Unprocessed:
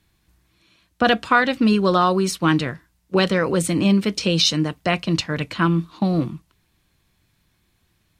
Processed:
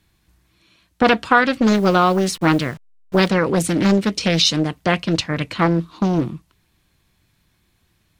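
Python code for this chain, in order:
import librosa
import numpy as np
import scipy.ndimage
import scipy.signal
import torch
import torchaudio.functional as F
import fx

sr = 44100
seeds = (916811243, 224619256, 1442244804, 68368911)

y = fx.delta_hold(x, sr, step_db=-39.0, at=(1.74, 3.28))
y = fx.doppler_dist(y, sr, depth_ms=0.68)
y = y * librosa.db_to_amplitude(2.0)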